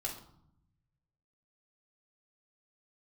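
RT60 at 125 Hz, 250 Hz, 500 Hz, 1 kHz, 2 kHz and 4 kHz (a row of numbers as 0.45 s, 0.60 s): 1.7 s, 1.2 s, 0.65 s, 0.70 s, 0.45 s, 0.45 s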